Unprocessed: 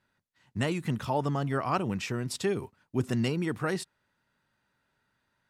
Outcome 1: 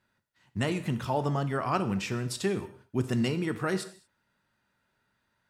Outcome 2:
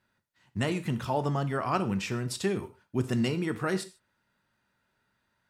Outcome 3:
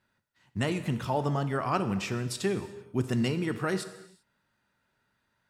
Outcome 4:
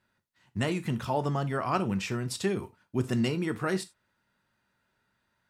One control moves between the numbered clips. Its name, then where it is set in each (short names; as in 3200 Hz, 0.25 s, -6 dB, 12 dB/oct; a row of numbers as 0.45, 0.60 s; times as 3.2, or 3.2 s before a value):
non-linear reverb, gate: 0.25, 0.17, 0.41, 0.11 s